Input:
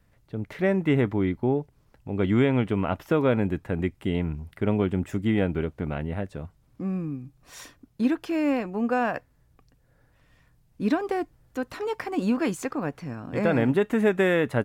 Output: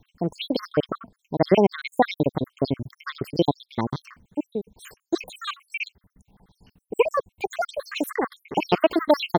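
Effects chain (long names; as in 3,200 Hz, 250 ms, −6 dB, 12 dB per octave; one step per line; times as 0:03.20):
time-frequency cells dropped at random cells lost 75%
change of speed 1.56×
level +7 dB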